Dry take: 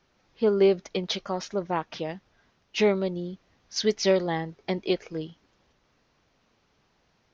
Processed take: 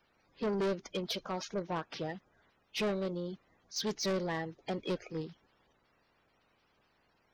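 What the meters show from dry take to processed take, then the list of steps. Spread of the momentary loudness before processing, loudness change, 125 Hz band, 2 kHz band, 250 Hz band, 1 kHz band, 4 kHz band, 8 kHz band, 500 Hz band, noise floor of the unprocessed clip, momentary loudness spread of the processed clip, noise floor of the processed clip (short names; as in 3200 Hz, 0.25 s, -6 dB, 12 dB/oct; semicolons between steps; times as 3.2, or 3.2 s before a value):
14 LU, -9.5 dB, -6.5 dB, -7.0 dB, -8.0 dB, -7.0 dB, -7.0 dB, n/a, -11.0 dB, -69 dBFS, 9 LU, -73 dBFS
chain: bin magnitudes rounded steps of 30 dB; soft clip -25.5 dBFS, distortion -8 dB; gain -3.5 dB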